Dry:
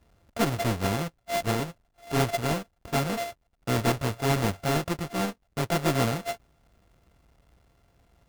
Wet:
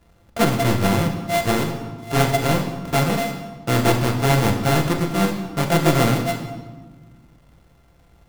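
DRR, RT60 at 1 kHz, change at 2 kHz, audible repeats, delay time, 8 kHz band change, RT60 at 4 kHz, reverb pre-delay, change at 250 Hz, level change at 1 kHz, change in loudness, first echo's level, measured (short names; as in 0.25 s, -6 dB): 3.5 dB, 1.3 s, +8.0 dB, none, none, +7.0 dB, 1.0 s, 6 ms, +9.0 dB, +7.5 dB, +8.0 dB, none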